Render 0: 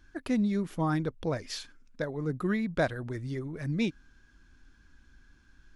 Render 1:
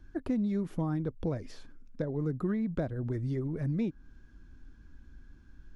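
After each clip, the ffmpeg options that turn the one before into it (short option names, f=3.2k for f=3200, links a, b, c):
-filter_complex "[0:a]tiltshelf=f=790:g=7,acrossover=split=550|1400[a][b][c];[a]acompressor=threshold=-30dB:ratio=4[d];[b]acompressor=threshold=-43dB:ratio=4[e];[c]acompressor=threshold=-55dB:ratio=4[f];[d][e][f]amix=inputs=3:normalize=0"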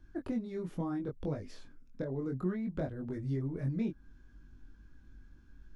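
-af "flanger=delay=20:depth=2.9:speed=0.68"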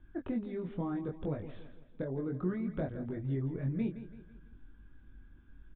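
-af "aecho=1:1:166|332|498|664:0.224|0.101|0.0453|0.0204,aresample=8000,aresample=44100"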